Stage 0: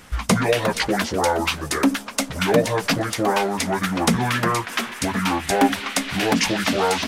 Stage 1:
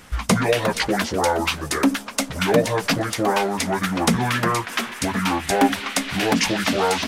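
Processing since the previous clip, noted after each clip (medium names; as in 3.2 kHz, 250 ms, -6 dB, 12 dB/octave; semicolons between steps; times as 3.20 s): no audible change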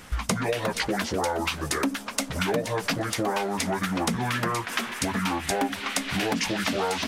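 compression 4:1, threshold -24 dBFS, peak gain reduction 11 dB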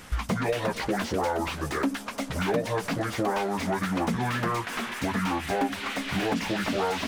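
slew-rate limiter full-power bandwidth 77 Hz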